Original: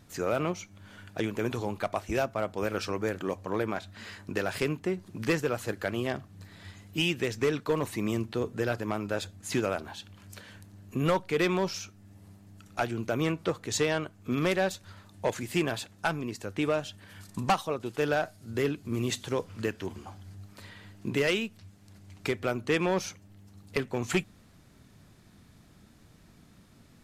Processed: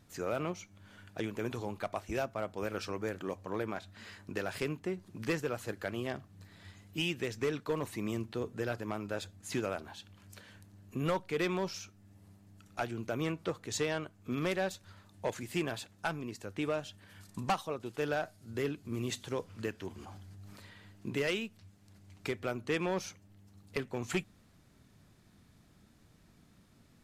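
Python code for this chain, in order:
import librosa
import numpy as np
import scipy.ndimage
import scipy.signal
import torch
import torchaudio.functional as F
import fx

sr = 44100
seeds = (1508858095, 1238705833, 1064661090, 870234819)

y = fx.sustainer(x, sr, db_per_s=23.0, at=(19.93, 20.65))
y = F.gain(torch.from_numpy(y), -6.0).numpy()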